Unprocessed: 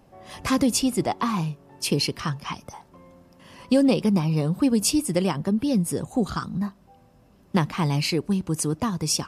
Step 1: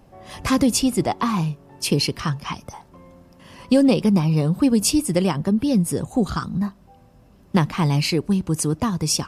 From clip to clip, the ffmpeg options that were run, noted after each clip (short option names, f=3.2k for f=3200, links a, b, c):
-af "lowshelf=f=100:g=6,volume=2.5dB"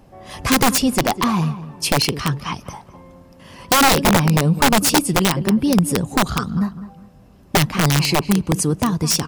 -filter_complex "[0:a]asplit=2[a][b];[b]adelay=203,lowpass=f=2.2k:p=1,volume=-13.5dB,asplit=2[c][d];[d]adelay=203,lowpass=f=2.2k:p=1,volume=0.29,asplit=2[e][f];[f]adelay=203,lowpass=f=2.2k:p=1,volume=0.29[g];[a][c][e][g]amix=inputs=4:normalize=0,aeval=exprs='(mod(3.76*val(0)+1,2)-1)/3.76':c=same,volume=3dB"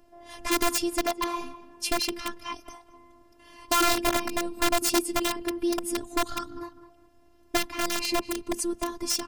-af "afftfilt=real='hypot(re,im)*cos(PI*b)':imag='0':win_size=512:overlap=0.75,volume=-5.5dB"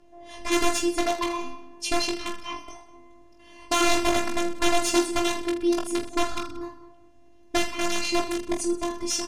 -filter_complex "[0:a]lowpass=8.1k,asplit=2[a][b];[b]aecho=0:1:20|46|79.8|123.7|180.9:0.631|0.398|0.251|0.158|0.1[c];[a][c]amix=inputs=2:normalize=0"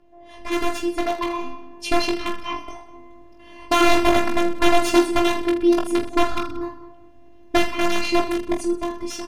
-af "equalizer=f=7.3k:t=o:w=1.5:g=-11,dynaudnorm=f=420:g=7:m=11.5dB"